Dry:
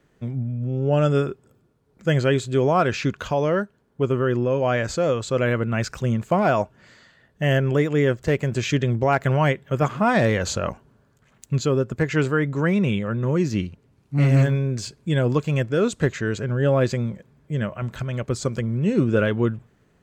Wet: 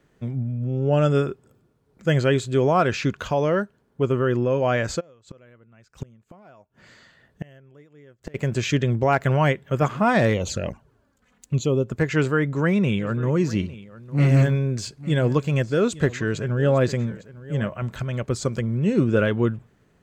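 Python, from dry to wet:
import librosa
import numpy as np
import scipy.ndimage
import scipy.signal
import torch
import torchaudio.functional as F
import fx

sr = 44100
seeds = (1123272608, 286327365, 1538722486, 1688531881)

y = fx.gate_flip(x, sr, shuts_db=-20.0, range_db=-30, at=(4.99, 8.34), fade=0.02)
y = fx.env_flanger(y, sr, rest_ms=4.3, full_db=-19.5, at=(10.33, 11.87), fade=0.02)
y = fx.echo_single(y, sr, ms=853, db=-18.0, at=(12.98, 17.67), fade=0.02)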